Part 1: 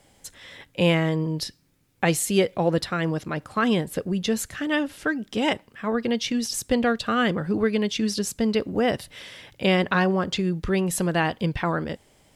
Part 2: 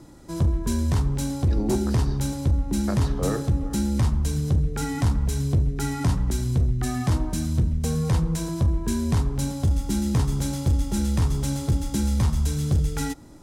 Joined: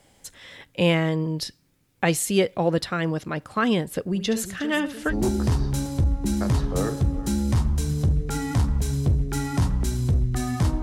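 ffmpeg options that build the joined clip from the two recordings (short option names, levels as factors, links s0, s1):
-filter_complex "[0:a]asettb=1/sr,asplit=3[s0][s1][s2];[s0]atrim=end=4.074[s3];[s1]atrim=start=4.07:end=5.15,asetpts=PTS-STARTPTS,afade=t=in:d=0.004:c=qsin,afade=t=out:st=1.076:d=0.004:c=qsin,aecho=1:1:71|358|655:0.282|0.211|0.119,atrim=end_sample=47628[s4];[s2]atrim=start=5.146[s5];[s3][s4]acrossfade=d=0.004:c1=hsin:c2=qsin[s6];[s6][s5]acrossfade=d=0.004:c1=qsin:c2=hsin,apad=whole_dur=10.82,atrim=end=10.82,atrim=end=5.15,asetpts=PTS-STARTPTS[s7];[1:a]atrim=start=1.54:end=7.29,asetpts=PTS-STARTPTS[s8];[s7][s8]acrossfade=d=0.08:c1=tri:c2=tri"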